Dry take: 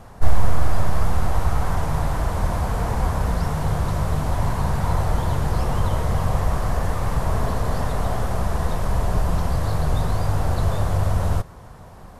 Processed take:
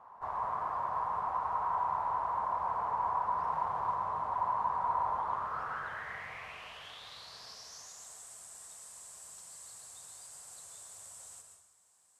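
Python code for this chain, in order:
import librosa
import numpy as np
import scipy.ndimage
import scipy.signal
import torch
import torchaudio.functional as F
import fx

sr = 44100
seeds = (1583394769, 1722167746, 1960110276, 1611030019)

y = fx.zero_step(x, sr, step_db=-31.5, at=(3.38, 3.95))
y = fx.filter_sweep_bandpass(y, sr, from_hz=1000.0, to_hz=7900.0, start_s=5.19, end_s=8.14, q=6.9)
y = fx.rev_plate(y, sr, seeds[0], rt60_s=0.88, hf_ratio=0.85, predelay_ms=100, drr_db=4.0)
y = y * 10.0 ** (2.0 / 20.0)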